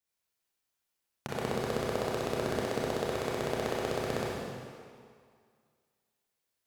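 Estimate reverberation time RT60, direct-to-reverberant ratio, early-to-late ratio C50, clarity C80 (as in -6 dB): 2.1 s, -5.5 dB, -3.0 dB, 0.0 dB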